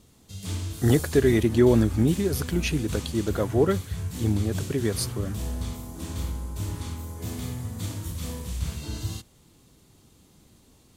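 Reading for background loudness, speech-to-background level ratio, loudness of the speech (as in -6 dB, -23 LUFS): -33.5 LUFS, 9.0 dB, -24.5 LUFS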